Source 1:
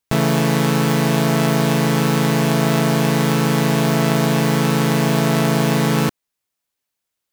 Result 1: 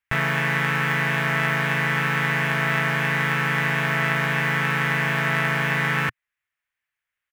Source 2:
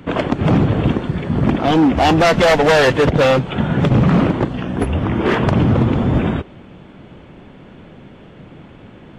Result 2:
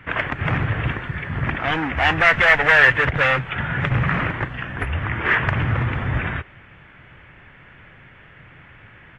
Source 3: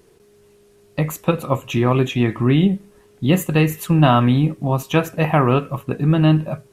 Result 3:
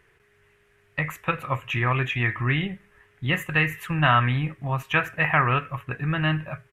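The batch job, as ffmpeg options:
-af "firequalizer=gain_entry='entry(120,0);entry(200,-12);entry(1800,13);entry(4200,-9)':delay=0.05:min_phase=1,volume=0.596"

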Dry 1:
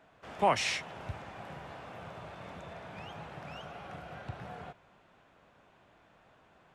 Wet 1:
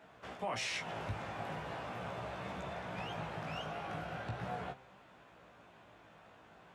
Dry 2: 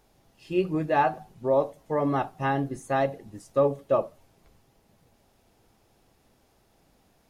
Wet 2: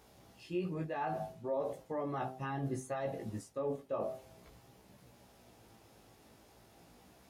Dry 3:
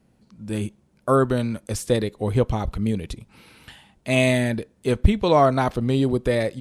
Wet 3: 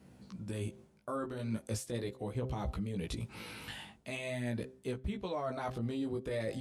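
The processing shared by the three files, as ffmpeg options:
-af "highpass=60,bandreject=f=130:t=h:w=4,bandreject=f=260:t=h:w=4,bandreject=f=390:t=h:w=4,bandreject=f=520:t=h:w=4,bandreject=f=650:t=h:w=4,bandreject=f=780:t=h:w=4,areverse,acompressor=threshold=0.0251:ratio=16,areverse,alimiter=level_in=2.51:limit=0.0631:level=0:latency=1:release=134,volume=0.398,flanger=delay=15.5:depth=3.2:speed=0.4,volume=2.11"

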